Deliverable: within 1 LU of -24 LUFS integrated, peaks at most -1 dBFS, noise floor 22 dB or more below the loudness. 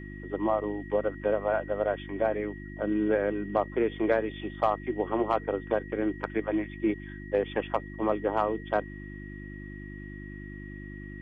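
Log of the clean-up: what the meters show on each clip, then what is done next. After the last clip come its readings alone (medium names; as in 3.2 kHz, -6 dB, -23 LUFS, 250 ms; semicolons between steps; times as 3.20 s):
hum 50 Hz; highest harmonic 350 Hz; hum level -39 dBFS; steady tone 1.9 kHz; tone level -47 dBFS; loudness -29.5 LUFS; peak level -13.0 dBFS; loudness target -24.0 LUFS
-> de-hum 50 Hz, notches 7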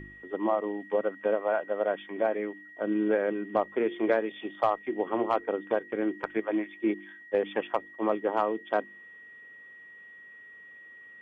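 hum not found; steady tone 1.9 kHz; tone level -47 dBFS
-> band-stop 1.9 kHz, Q 30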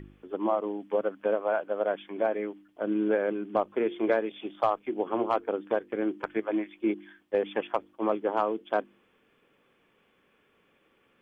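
steady tone not found; loudness -30.0 LUFS; peak level -13.0 dBFS; loudness target -24.0 LUFS
-> trim +6 dB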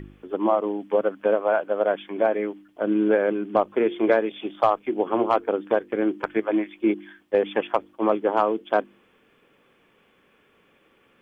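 loudness -24.0 LUFS; peak level -7.0 dBFS; noise floor -62 dBFS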